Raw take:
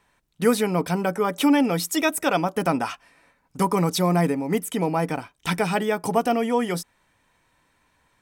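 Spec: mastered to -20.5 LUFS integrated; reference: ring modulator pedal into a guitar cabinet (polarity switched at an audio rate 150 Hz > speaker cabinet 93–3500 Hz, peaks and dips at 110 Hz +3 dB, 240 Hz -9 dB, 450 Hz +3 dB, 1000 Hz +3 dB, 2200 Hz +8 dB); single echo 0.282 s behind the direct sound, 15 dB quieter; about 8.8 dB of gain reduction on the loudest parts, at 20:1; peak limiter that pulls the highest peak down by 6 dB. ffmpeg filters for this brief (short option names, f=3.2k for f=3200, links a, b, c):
-af "acompressor=threshold=-22dB:ratio=20,alimiter=limit=-18.5dB:level=0:latency=1,aecho=1:1:282:0.178,aeval=exprs='val(0)*sgn(sin(2*PI*150*n/s))':c=same,highpass=93,equalizer=f=110:t=q:w=4:g=3,equalizer=f=240:t=q:w=4:g=-9,equalizer=f=450:t=q:w=4:g=3,equalizer=f=1k:t=q:w=4:g=3,equalizer=f=2.2k:t=q:w=4:g=8,lowpass=f=3.5k:w=0.5412,lowpass=f=3.5k:w=1.3066,volume=8.5dB"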